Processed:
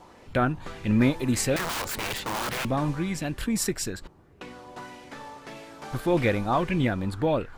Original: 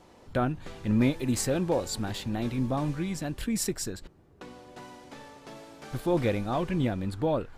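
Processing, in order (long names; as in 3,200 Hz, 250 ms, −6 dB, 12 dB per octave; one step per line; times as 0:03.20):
0:01.56–0:02.65: wrap-around overflow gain 29.5 dB
auto-filter bell 1.7 Hz 910–2,600 Hz +8 dB
level +2.5 dB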